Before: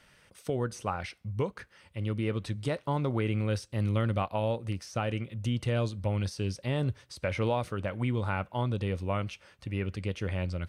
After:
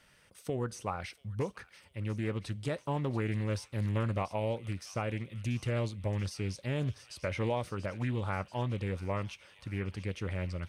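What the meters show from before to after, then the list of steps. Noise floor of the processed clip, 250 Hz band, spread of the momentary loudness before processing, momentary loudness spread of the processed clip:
-64 dBFS, -3.5 dB, 6 LU, 6 LU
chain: treble shelf 6.6 kHz +4.5 dB; on a send: feedback echo behind a high-pass 686 ms, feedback 63%, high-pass 2.1 kHz, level -12.5 dB; on the sum: loudspeaker Doppler distortion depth 0.25 ms; trim -3.5 dB

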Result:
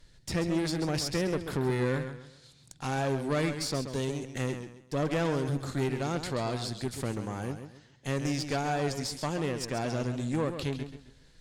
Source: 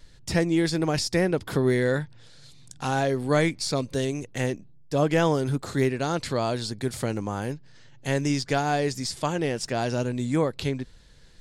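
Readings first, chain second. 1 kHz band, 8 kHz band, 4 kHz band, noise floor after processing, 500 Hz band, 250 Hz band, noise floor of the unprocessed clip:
-6.0 dB, -4.5 dB, -4.5 dB, -59 dBFS, -6.5 dB, -5.5 dB, -51 dBFS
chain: valve stage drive 21 dB, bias 0.55; modulated delay 134 ms, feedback 31%, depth 100 cents, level -9 dB; trim -2.5 dB

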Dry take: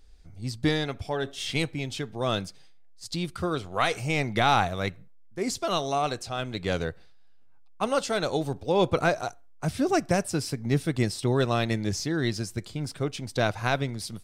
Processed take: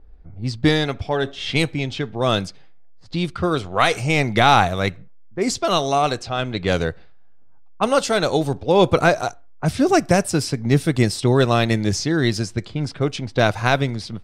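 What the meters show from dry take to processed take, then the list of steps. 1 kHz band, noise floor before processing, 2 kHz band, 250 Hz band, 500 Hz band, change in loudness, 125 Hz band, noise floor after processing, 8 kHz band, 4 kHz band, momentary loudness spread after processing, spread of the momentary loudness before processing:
+8.0 dB, -48 dBFS, +8.0 dB, +8.0 dB, +8.0 dB, +8.0 dB, +8.0 dB, -41 dBFS, +6.5 dB, +7.5 dB, 10 LU, 9 LU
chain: level-controlled noise filter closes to 1 kHz, open at -23.5 dBFS; trim +8 dB

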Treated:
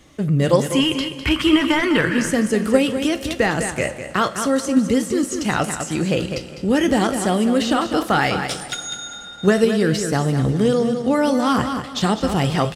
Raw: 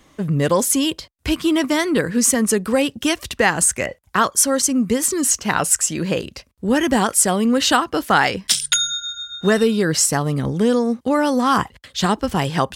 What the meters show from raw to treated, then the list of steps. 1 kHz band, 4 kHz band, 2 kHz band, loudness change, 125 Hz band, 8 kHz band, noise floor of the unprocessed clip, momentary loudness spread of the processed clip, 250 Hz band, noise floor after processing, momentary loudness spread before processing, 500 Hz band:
-2.0 dB, -2.0 dB, -1.0 dB, -1.0 dB, +3.0 dB, -11.5 dB, -55 dBFS, 6 LU, +1.0 dB, -35 dBFS, 7 LU, +1.0 dB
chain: time-frequency box 0.62–2.23 s, 830–3300 Hz +11 dB; de-esser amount 55%; graphic EQ with 31 bands 125 Hz +6 dB, 1 kHz -7 dB, 1.6 kHz -3 dB, 12.5 kHz -4 dB; resampled via 32 kHz; on a send: feedback delay 203 ms, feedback 28%, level -9.5 dB; on the sum: two-slope reverb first 0.24 s, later 3.6 s, from -18 dB, DRR 9 dB; in parallel at -2.5 dB: level held to a coarse grid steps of 14 dB; on the sum: trim -1.5 dB

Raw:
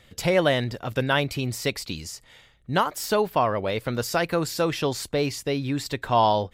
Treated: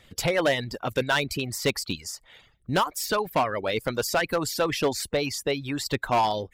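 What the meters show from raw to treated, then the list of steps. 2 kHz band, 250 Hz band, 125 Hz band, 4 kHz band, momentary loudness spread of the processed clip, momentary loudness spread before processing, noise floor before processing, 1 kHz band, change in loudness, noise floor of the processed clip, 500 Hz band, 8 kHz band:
+0.5 dB, -3.0 dB, -5.0 dB, +0.5 dB, 6 LU, 8 LU, -56 dBFS, -2.0 dB, -1.5 dB, -62 dBFS, -2.0 dB, +2.0 dB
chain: harmonic-percussive split percussive +9 dB; reverb removal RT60 0.53 s; hard clipper -11.5 dBFS, distortion -11 dB; trim -5.5 dB

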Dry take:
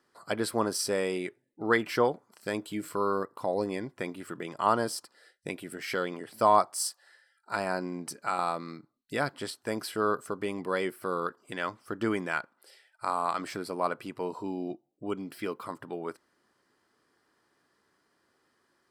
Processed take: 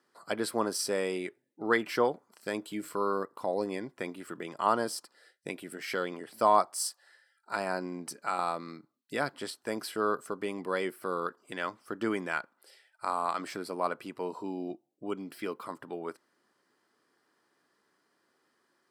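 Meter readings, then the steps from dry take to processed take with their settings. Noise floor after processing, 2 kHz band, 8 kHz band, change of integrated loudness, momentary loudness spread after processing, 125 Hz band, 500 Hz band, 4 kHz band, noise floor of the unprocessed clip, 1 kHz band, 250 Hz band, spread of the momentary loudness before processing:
-75 dBFS, -1.5 dB, -1.5 dB, -1.5 dB, 12 LU, -5.0 dB, -1.5 dB, -1.5 dB, -73 dBFS, -1.5 dB, -2.0 dB, 12 LU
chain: high-pass 160 Hz 12 dB/octave; trim -1.5 dB

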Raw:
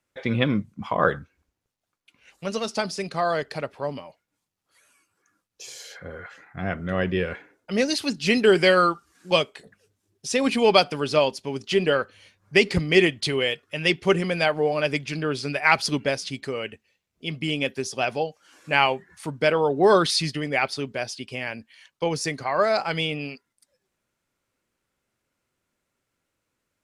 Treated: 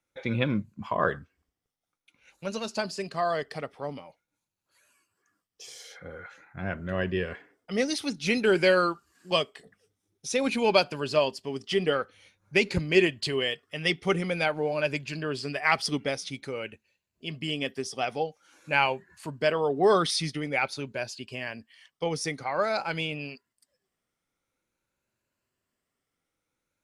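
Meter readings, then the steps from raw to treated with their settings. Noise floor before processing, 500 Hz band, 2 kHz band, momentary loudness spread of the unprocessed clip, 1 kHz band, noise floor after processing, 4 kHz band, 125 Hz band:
-81 dBFS, -4.5 dB, -4.5 dB, 17 LU, -4.5 dB, -85 dBFS, -5.0 dB, -4.5 dB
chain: drifting ripple filter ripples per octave 1.4, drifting +0.49 Hz, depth 6 dB; trim -5 dB

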